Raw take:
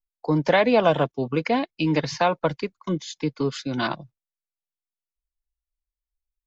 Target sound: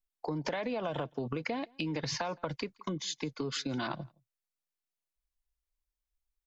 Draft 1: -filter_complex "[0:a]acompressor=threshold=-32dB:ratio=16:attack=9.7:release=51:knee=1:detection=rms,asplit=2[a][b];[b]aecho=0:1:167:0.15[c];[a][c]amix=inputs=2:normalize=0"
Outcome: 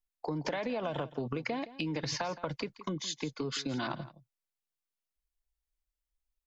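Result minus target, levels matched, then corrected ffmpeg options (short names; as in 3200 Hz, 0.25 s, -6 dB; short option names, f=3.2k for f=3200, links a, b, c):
echo-to-direct +11.5 dB
-filter_complex "[0:a]acompressor=threshold=-32dB:ratio=16:attack=9.7:release=51:knee=1:detection=rms,asplit=2[a][b];[b]aecho=0:1:167:0.0398[c];[a][c]amix=inputs=2:normalize=0"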